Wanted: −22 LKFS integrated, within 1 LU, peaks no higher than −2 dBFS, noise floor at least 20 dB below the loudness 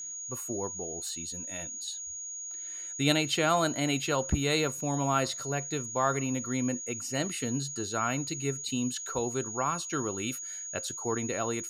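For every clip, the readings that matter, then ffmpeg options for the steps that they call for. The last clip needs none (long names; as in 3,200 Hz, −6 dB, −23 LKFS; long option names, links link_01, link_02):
interfering tone 6,700 Hz; level of the tone −37 dBFS; integrated loudness −31.0 LKFS; sample peak −12.0 dBFS; target loudness −22.0 LKFS
→ -af "bandreject=frequency=6700:width=30"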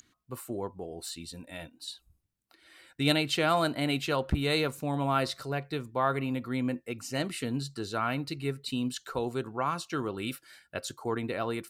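interfering tone none found; integrated loudness −31.5 LKFS; sample peak −12.0 dBFS; target loudness −22.0 LKFS
→ -af "volume=9.5dB"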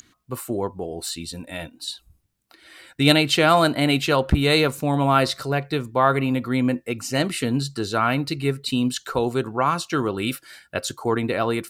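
integrated loudness −22.0 LKFS; sample peak −2.5 dBFS; background noise floor −66 dBFS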